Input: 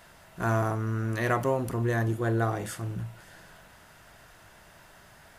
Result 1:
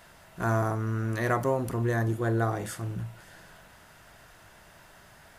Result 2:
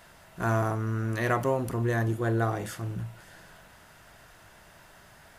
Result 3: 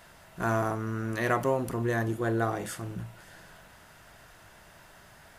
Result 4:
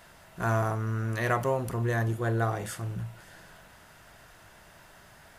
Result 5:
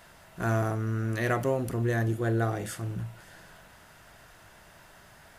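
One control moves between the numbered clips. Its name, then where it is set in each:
dynamic equaliser, frequency: 2,800, 8,900, 100, 290, 1,000 Hertz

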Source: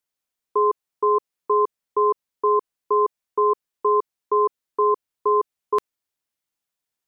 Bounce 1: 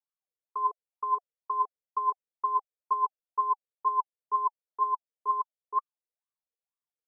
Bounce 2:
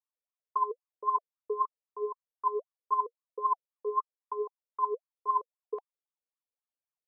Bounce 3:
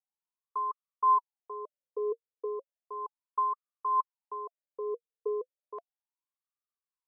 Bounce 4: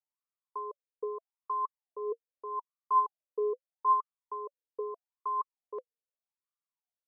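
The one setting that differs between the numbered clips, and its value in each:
LFO wah, speed: 2.1, 3.8, 0.34, 0.8 Hertz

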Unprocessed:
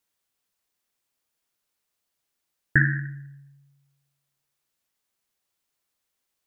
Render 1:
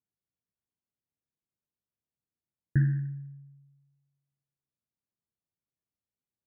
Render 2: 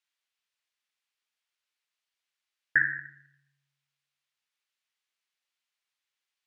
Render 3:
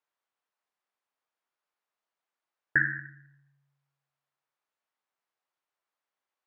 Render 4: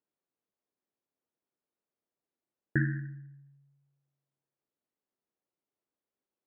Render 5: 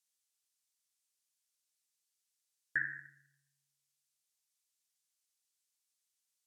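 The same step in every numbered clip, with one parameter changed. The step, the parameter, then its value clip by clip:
resonant band-pass, frequency: 120, 2,600, 990, 330, 7,400 Hertz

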